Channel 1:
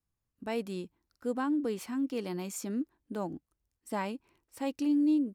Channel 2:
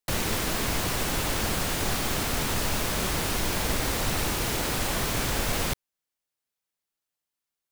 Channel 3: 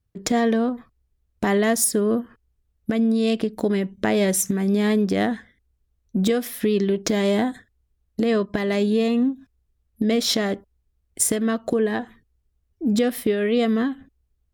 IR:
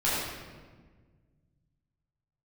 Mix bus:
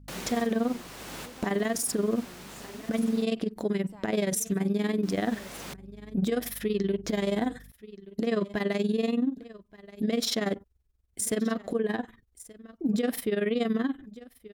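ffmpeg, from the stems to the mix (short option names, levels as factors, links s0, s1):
-filter_complex "[0:a]acrossover=split=130[s0][s1];[s1]acompressor=threshold=0.00794:ratio=2[s2];[s0][s2]amix=inputs=2:normalize=0,volume=0.316,asplit=3[s3][s4][s5];[s4]volume=0.112[s6];[1:a]highpass=f=140:w=0.5412,highpass=f=140:w=1.3066,highshelf=f=11000:g=-5.5,aeval=exprs='val(0)+0.01*(sin(2*PI*50*n/s)+sin(2*PI*2*50*n/s)/2+sin(2*PI*3*50*n/s)/3+sin(2*PI*4*50*n/s)/4+sin(2*PI*5*50*n/s)/5)':c=same,volume=0.355,asplit=3[s7][s8][s9];[s7]atrim=end=3.25,asetpts=PTS-STARTPTS,afade=t=out:st=3.246:d=0.004:c=hsin[s10];[s8]atrim=start=3.25:end=5.03,asetpts=PTS-STARTPTS,volume=0[s11];[s9]atrim=start=5.03,asetpts=PTS-STARTPTS,afade=t=in:d=0.004:c=hsin[s12];[s10][s11][s12]concat=n=3:v=0:a=1[s13];[2:a]tremolo=f=21:d=0.824,volume=1.06,asplit=2[s14][s15];[s15]volume=0.0708[s16];[s5]apad=whole_len=340310[s17];[s13][s17]sidechaincompress=threshold=0.00158:ratio=4:attack=31:release=643[s18];[s6][s16]amix=inputs=2:normalize=0,aecho=0:1:1177:1[s19];[s3][s18][s14][s19]amix=inputs=4:normalize=0,alimiter=limit=0.112:level=0:latency=1:release=49"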